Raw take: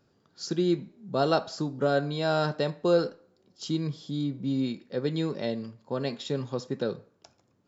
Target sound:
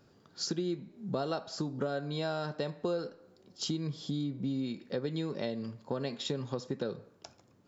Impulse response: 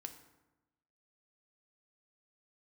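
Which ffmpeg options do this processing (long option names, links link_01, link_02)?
-af "acompressor=threshold=-36dB:ratio=6,volume=4.5dB"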